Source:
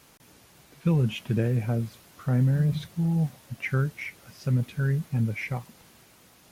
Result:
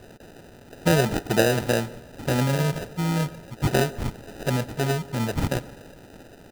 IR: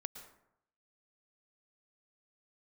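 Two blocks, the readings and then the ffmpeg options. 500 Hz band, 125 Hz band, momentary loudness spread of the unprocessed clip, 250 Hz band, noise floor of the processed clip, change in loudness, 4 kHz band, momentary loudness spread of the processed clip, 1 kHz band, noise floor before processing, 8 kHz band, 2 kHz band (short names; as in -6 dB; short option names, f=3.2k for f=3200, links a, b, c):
+11.0 dB, -1.5 dB, 12 LU, +2.0 dB, -48 dBFS, +2.5 dB, +11.5 dB, 11 LU, +12.5 dB, -57 dBFS, n/a, +6.5 dB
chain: -filter_complex "[0:a]highpass=270,aecho=1:1:2.1:0.34,acrusher=samples=40:mix=1:aa=0.000001,asplit=2[a][b];[1:a]atrim=start_sample=2205[c];[b][c]afir=irnorm=-1:irlink=0,volume=-7.5dB[d];[a][d]amix=inputs=2:normalize=0,volume=8dB"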